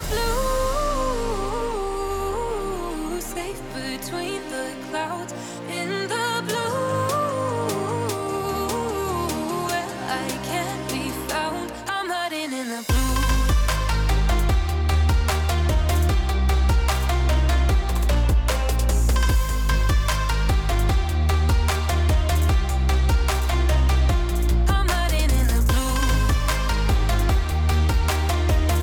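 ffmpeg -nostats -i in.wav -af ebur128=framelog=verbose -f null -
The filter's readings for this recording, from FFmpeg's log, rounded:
Integrated loudness:
  I:         -23.0 LUFS
  Threshold: -33.0 LUFS
Loudness range:
  LRA:         6.4 LU
  Threshold: -43.0 LUFS
  LRA low:   -27.5 LUFS
  LRA high:  -21.2 LUFS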